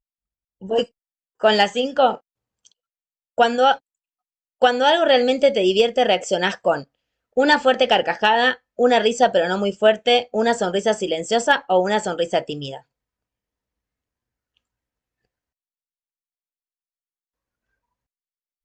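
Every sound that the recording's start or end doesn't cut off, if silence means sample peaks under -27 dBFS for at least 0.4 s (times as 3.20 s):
0.64–0.83 s
1.44–2.15 s
3.38–3.75 s
4.62–6.80 s
7.37–12.77 s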